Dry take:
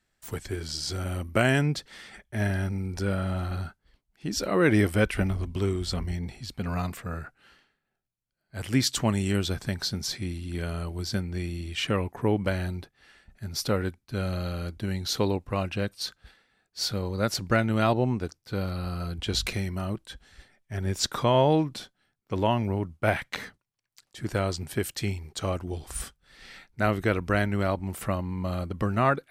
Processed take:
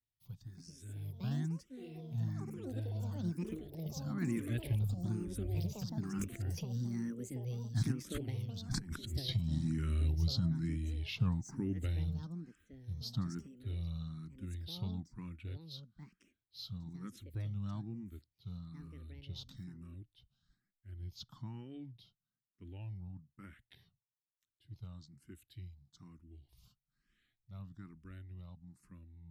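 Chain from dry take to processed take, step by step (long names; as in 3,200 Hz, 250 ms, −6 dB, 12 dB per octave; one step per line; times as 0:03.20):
source passing by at 0:08.74, 32 m/s, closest 8.4 metres
flat-topped bell 1,100 Hz −8.5 dB 2.9 octaves
compressor whose output falls as the input rises −45 dBFS, ratio −1
graphic EQ with 10 bands 125 Hz +9 dB, 500 Hz −10 dB, 8,000 Hz −9 dB
delay with pitch and tempo change per echo 379 ms, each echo +7 semitones, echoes 3, each echo −6 dB
frequency shifter mixed with the dry sound +1.1 Hz
level +9 dB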